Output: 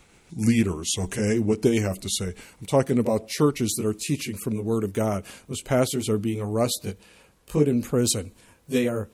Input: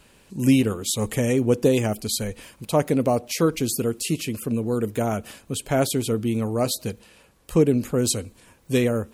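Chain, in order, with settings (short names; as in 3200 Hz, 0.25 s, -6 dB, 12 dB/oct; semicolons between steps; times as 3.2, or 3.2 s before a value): gliding pitch shift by -2.5 st ending unshifted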